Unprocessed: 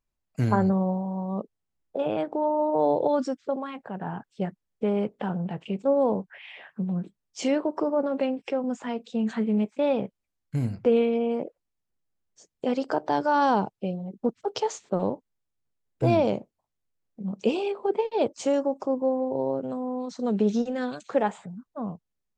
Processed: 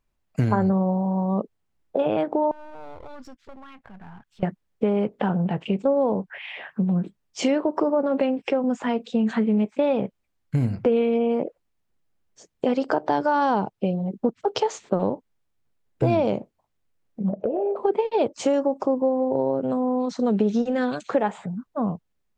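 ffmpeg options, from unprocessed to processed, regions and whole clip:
-filter_complex "[0:a]asettb=1/sr,asplit=3[s0][s1][s2];[s0]atrim=end=2.514[s3];[s1]atrim=start=2.51:end=4.43,asetpts=PTS-STARTPTS,afade=t=in:d=0.004:c=qsin,afade=t=out:st=1.916:d=0.004:c=qsin,aeval=exprs='if(lt(val(0),0),0.447*val(0),val(0))':c=same,equalizer=f=460:t=o:w=1.8:g=-12,acompressor=threshold=0.00141:ratio=2:attack=3.2:release=140:knee=1:detection=peak[s4];[s2]atrim=start=4.426[s5];[s3][s4]acrossfade=d=0.004:c1=hsin:c2=qsin[s6];[s6][s5]acrossfade=d=0.004:c1=qsin:c2=hsin,asettb=1/sr,asplit=3[s7][s8][s9];[s7]atrim=end=17.294[s10];[s8]atrim=start=17.29:end=17.76,asetpts=PTS-STARTPTS,afade=t=in:d=0.004:c=qsin,afade=t=out:st=0.466:d=0.004:c=qsin,lowpass=f=620:t=q:w=7.4,acompressor=threshold=0.0316:ratio=5:attack=3.2:release=140:knee=1:detection=peak[s11];[s9]atrim=start=17.756[s12];[s10][s11]acrossfade=d=0.004:c1=hsin:c2=qsin[s13];[s13][s12]acrossfade=d=0.004:c1=qsin:c2=hsin,bass=f=250:g=0,treble=f=4000:g=-6,acompressor=threshold=0.0398:ratio=3,volume=2.66"

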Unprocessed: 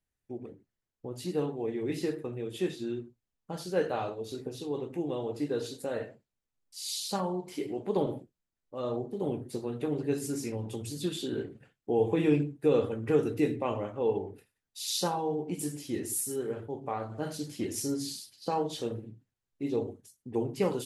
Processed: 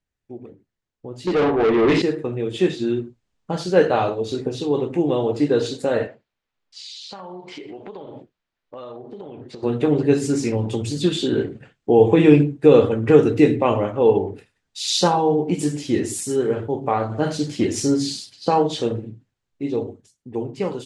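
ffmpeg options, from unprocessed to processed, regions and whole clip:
-filter_complex "[0:a]asettb=1/sr,asplit=3[s0][s1][s2];[s0]atrim=end=1.274[s3];[s1]atrim=start=1.27:end=2.02,asetpts=PTS-STARTPTS,afade=t=in:d=0.004:c=qsin,afade=t=out:st=0.746:d=0.004:c=qsin,aemphasis=mode=reproduction:type=75fm,asplit=2[s4][s5];[s5]adelay=18,volume=0.251[s6];[s4][s6]amix=inputs=2:normalize=0,atrim=end_sample=33075,asplit=2[s7][s8];[s8]highpass=f=720:p=1,volume=22.4,asoftclip=type=tanh:threshold=0.133[s9];[s7][s9]amix=inputs=2:normalize=0,lowpass=f=4300:p=1,volume=0.501[s10];[s2]atrim=start=2.016[s11];[s3][s10]acrossfade=d=0.004:c1=hsin:c2=qsin[s12];[s12][s11]acrossfade=d=0.004:c1=qsin:c2=hsin,asettb=1/sr,asplit=3[s13][s14][s15];[s13]atrim=end=6.074[s16];[s14]atrim=start=6.07:end=9.63,asetpts=PTS-STARTPTS,afade=t=in:d=0.004:c=qsin,afade=t=out:st=3.556:d=0.004:c=qsin,lowpass=4100,lowshelf=f=420:g=-11.5,acompressor=threshold=0.00562:ratio=16:attack=3.2:release=140:knee=1:detection=peak[s17];[s15]atrim=start=9.626[s18];[s16][s17]acrossfade=d=0.004:c1=hsin:c2=qsin[s19];[s19][s18]acrossfade=d=0.004:c1=qsin:c2=hsin,lowpass=f=7500:w=0.5412,lowpass=f=7500:w=1.3066,equalizer=f=5700:t=o:w=0.73:g=-3,dynaudnorm=f=360:g=11:m=3.16,volume=1.5"

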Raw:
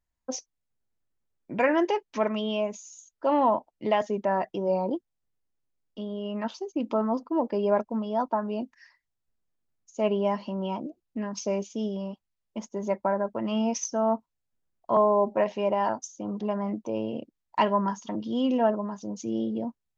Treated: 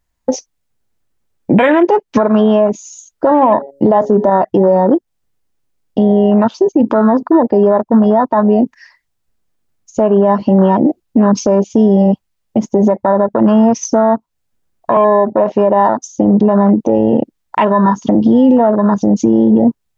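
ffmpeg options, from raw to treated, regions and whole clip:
-filter_complex "[0:a]asettb=1/sr,asplit=3[s0][s1][s2];[s0]atrim=end=3.314[s3];[s1]atrim=start=3.31:end=4.3,asetpts=PTS-STARTPTS,afade=t=in:d=0.004:c=qsin,afade=t=out:st=0.986:d=0.004:c=qsin,equalizer=f=2300:w=1.3:g=-11,bandreject=f=139.2:t=h:w=4,bandreject=f=278.4:t=h:w=4,bandreject=f=417.6:t=h:w=4,bandreject=f=556.8:t=h:w=4,acontrast=37[s4];[s2]atrim=start=4.296[s5];[s3][s4]acrossfade=d=0.004:c1=hsin:c2=qsin[s6];[s6][s5]acrossfade=d=0.004:c1=qsin:c2=hsin,afwtdn=0.0224,acompressor=threshold=0.02:ratio=10,alimiter=level_in=35.5:limit=0.891:release=50:level=0:latency=1,volume=0.891"

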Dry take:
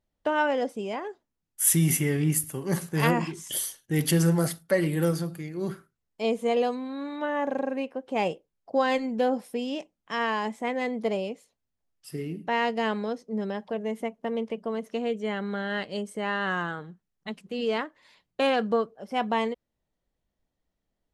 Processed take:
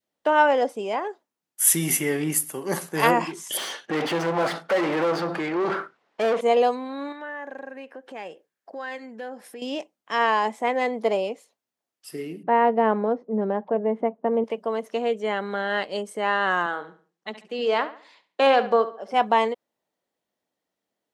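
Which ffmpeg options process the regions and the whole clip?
-filter_complex "[0:a]asettb=1/sr,asplit=3[s0][s1][s2];[s0]atrim=end=3.574[s3];[s1]atrim=start=3.57:end=6.41,asetpts=PTS-STARTPTS,afade=t=in:d=0.004:c=qsin,afade=t=out:st=2.836:d=0.004:c=qsin,lowpass=4300,acompressor=threshold=0.0112:ratio=1.5:attack=3.2:release=140:knee=1:detection=peak,asplit=2[s4][s5];[s5]highpass=f=720:p=1,volume=39.8,asoftclip=type=tanh:threshold=0.106[s6];[s4][s6]amix=inputs=2:normalize=0,lowpass=f=1500:p=1,volume=0.501[s7];[s2]atrim=start=6.406[s8];[s3][s7]acrossfade=d=0.004:c1=hsin:c2=qsin[s9];[s9][s8]acrossfade=d=0.004:c1=qsin:c2=hsin,asettb=1/sr,asplit=3[s10][s11][s12];[s10]atrim=end=7.124[s13];[s11]atrim=start=7.12:end=9.62,asetpts=PTS-STARTPTS,afade=t=in:d=0.004:c=qsin,afade=t=out:st=2.496:d=0.004:c=qsin,equalizer=f=1700:t=o:w=0.47:g=11.5,acompressor=threshold=0.00708:ratio=2.5:attack=3.2:release=140:knee=1:detection=peak[s14];[s12]atrim=start=9.616[s15];[s13][s14]acrossfade=d=0.004:c1=hsin:c2=qsin[s16];[s16][s15]acrossfade=d=0.004:c1=qsin:c2=hsin,asettb=1/sr,asplit=3[s17][s18][s19];[s17]atrim=end=12.434[s20];[s18]atrim=start=12.43:end=14.44,asetpts=PTS-STARTPTS,afade=t=in:d=0.004:c=qsin,afade=t=out:st=2.006:d=0.004:c=qsin,lowpass=1400,lowshelf=f=280:g=10.5[s21];[s19]atrim=start=14.436[s22];[s20][s21]acrossfade=d=0.004:c1=hsin:c2=qsin[s23];[s23][s22]acrossfade=d=0.004:c1=qsin:c2=hsin,asettb=1/sr,asplit=3[s24][s25][s26];[s24]atrim=end=16.664[s27];[s25]atrim=start=16.66:end=19.14,asetpts=PTS-STARTPTS,afade=t=in:d=0.004:c=qsin,afade=t=out:st=2.476:d=0.004:c=qsin,highpass=210,lowpass=7300,asplit=2[s28][s29];[s29]adelay=70,lowpass=f=4700:p=1,volume=0.224,asplit=2[s30][s31];[s31]adelay=70,lowpass=f=4700:p=1,volume=0.36,asplit=2[s32][s33];[s33]adelay=70,lowpass=f=4700:p=1,volume=0.36,asplit=2[s34][s35];[s35]adelay=70,lowpass=f=4700:p=1,volume=0.36[s36];[s28][s30][s32][s34][s36]amix=inputs=5:normalize=0,atrim=end_sample=109368[s37];[s26]atrim=start=19.136[s38];[s27][s37]acrossfade=d=0.004:c1=hsin:c2=qsin[s39];[s39][s38]acrossfade=d=0.004:c1=qsin:c2=hsin,highpass=290,adynamicequalizer=threshold=0.0126:dfrequency=840:dqfactor=1:tfrequency=840:tqfactor=1:attack=5:release=100:ratio=0.375:range=2.5:mode=boostabove:tftype=bell,volume=1.5"

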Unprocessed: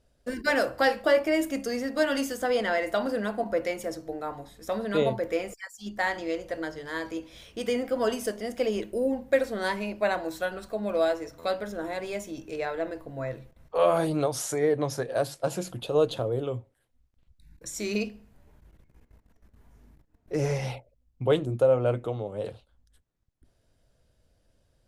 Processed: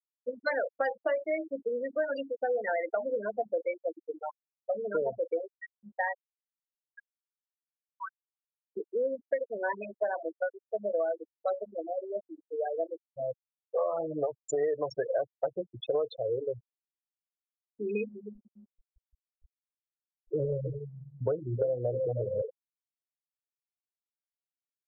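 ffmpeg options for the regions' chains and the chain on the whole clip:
-filter_complex "[0:a]asettb=1/sr,asplit=3[s0][s1][s2];[s0]atrim=end=6.184[s3];[s1]atrim=start=6.18:end=8.77,asetpts=PTS-STARTPTS,afade=t=in:d=0.004:c=qsin,afade=t=out:st=2.586:d=0.004:c=qsin,aecho=1:1:6:0.71,atrim=end_sample=114219,flanger=delay=5.3:depth=3.5:regen=-36:speed=1.4:shape=triangular,asuperpass=centerf=2200:order=20:qfactor=0.53[s4];[s2]atrim=start=8.766[s5];[s3][s4]acrossfade=d=0.004:c1=hsin:c2=qsin[s6];[s6][s5]acrossfade=d=0.004:c1=qsin:c2=hsin,asettb=1/sr,asplit=3[s7][s8][s9];[s7]atrim=end=14.494[s10];[s8]atrim=start=14.49:end=16.16,asetpts=PTS-STARTPTS,afade=t=in:d=0.004:c=qsin,afade=t=out:st=1.666:d=0.004:c=qsin,acontrast=29,lowshelf=f=290:g=-2.5[s11];[s9]atrim=start=16.156[s12];[s10][s11]acrossfade=d=0.004:c1=hsin:c2=qsin[s13];[s13][s12]acrossfade=d=0.004:c1=qsin:c2=hsin,asettb=1/sr,asplit=3[s14][s15][s16];[s14]atrim=end=17.704[s17];[s15]atrim=start=17.7:end=22.42,asetpts=PTS-STARTPTS,afade=t=in:d=0.004:c=qsin,afade=t=out:st=4.716:d=0.004:c=qsin,bass=f=250:g=10,treble=f=4000:g=-1,asplit=2[s18][s19];[s19]adelay=313,lowpass=f=3600:p=1,volume=0.316,asplit=2[s20][s21];[s21]adelay=313,lowpass=f=3600:p=1,volume=0.46,asplit=2[s22][s23];[s23]adelay=313,lowpass=f=3600:p=1,volume=0.46,asplit=2[s24][s25];[s25]adelay=313,lowpass=f=3600:p=1,volume=0.46,asplit=2[s26][s27];[s27]adelay=313,lowpass=f=3600:p=1,volume=0.46[s28];[s18][s20][s22][s24][s26][s28]amix=inputs=6:normalize=0,atrim=end_sample=208152[s29];[s16]atrim=start=22.416[s30];[s17][s29]acrossfade=d=0.004:c1=hsin:c2=qsin[s31];[s31][s30]acrossfade=d=0.004:c1=qsin:c2=hsin,afftfilt=real='re*gte(hypot(re,im),0.126)':imag='im*gte(hypot(re,im),0.126)':win_size=1024:overlap=0.75,lowshelf=f=340:t=q:w=1.5:g=-10,acompressor=threshold=0.0501:ratio=12"

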